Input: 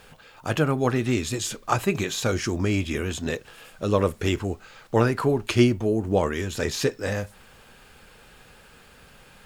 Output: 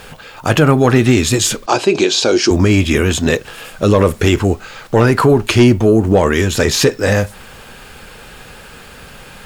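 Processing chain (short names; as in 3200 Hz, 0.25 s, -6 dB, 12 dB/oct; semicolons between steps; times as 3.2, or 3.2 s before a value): soft clip -11 dBFS, distortion -20 dB; 1.66–2.51 speaker cabinet 310–7900 Hz, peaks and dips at 350 Hz +7 dB, 1200 Hz -7 dB, 1900 Hz -9 dB, 4700 Hz +6 dB, 7200 Hz -4 dB; maximiser +15.5 dB; gain -1 dB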